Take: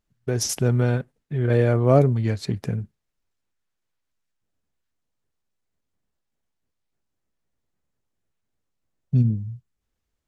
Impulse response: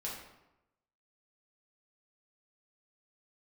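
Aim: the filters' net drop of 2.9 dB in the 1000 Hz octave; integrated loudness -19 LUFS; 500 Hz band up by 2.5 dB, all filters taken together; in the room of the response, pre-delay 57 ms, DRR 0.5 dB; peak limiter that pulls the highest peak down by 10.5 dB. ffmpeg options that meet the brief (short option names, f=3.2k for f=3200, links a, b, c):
-filter_complex "[0:a]equalizer=f=500:t=o:g=5,equalizer=f=1k:t=o:g=-8.5,alimiter=limit=-13.5dB:level=0:latency=1,asplit=2[a][b];[1:a]atrim=start_sample=2205,adelay=57[c];[b][c]afir=irnorm=-1:irlink=0,volume=-1.5dB[d];[a][d]amix=inputs=2:normalize=0,volume=3dB"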